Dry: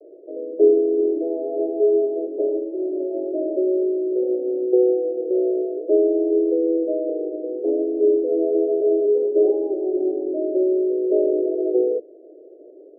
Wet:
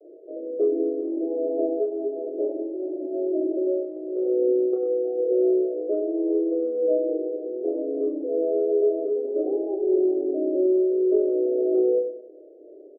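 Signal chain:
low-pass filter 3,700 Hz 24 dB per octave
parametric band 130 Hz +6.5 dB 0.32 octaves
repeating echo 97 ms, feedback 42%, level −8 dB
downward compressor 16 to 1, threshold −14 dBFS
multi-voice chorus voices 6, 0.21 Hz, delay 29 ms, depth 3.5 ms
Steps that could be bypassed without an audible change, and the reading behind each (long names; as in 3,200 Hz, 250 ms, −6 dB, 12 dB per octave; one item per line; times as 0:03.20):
low-pass filter 3,700 Hz: nothing at its input above 680 Hz
parametric band 130 Hz: nothing at its input below 270 Hz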